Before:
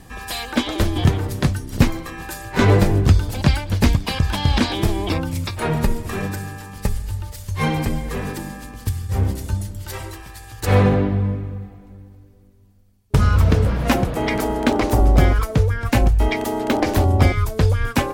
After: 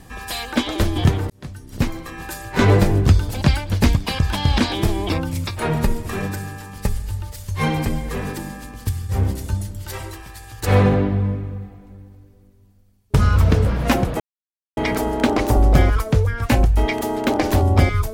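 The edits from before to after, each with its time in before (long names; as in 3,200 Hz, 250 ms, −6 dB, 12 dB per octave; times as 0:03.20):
0:01.30–0:02.25: fade in
0:14.20: splice in silence 0.57 s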